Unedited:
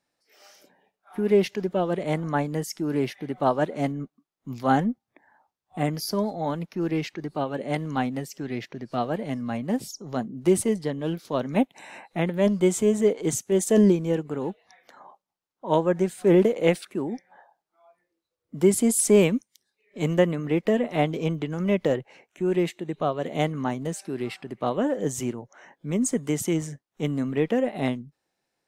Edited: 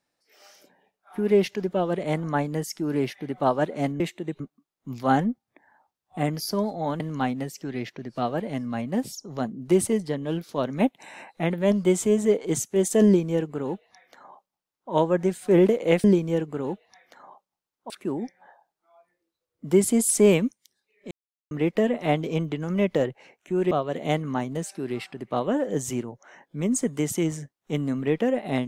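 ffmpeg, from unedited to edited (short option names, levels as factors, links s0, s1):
-filter_complex "[0:a]asplit=9[s0][s1][s2][s3][s4][s5][s6][s7][s8];[s0]atrim=end=4.002[s9];[s1]atrim=start=22.608:end=23.012[s10];[s2]atrim=start=3.998:end=6.602[s11];[s3]atrim=start=7.758:end=16.802[s12];[s4]atrim=start=13.808:end=15.672[s13];[s5]atrim=start=16.798:end=20.01,asetpts=PTS-STARTPTS,afade=t=out:st=3.208:d=0.004:c=hsin[s14];[s6]atrim=start=20.01:end=20.41,asetpts=PTS-STARTPTS,volume=0[s15];[s7]atrim=start=20.41:end=22.612,asetpts=PTS-STARTPTS,afade=t=in:d=0.004:c=hsin[s16];[s8]atrim=start=23.008[s17];[s9][s10]acrossfade=d=0.004:c1=hsin:c2=hsin[s18];[s18][s11]acrossfade=d=0.004:c1=hsin:c2=hsin[s19];[s19][s12]acrossfade=d=0.004:c1=hsin:c2=hsin[s20];[s20][s13]acrossfade=d=0.004:c1=hsin:c2=hsin[s21];[s14][s15][s16]concat=n=3:v=0:a=1[s22];[s21][s22]acrossfade=d=0.004:c1=hsin:c2=hsin[s23];[s23][s17]acrossfade=d=0.004:c1=hsin:c2=hsin"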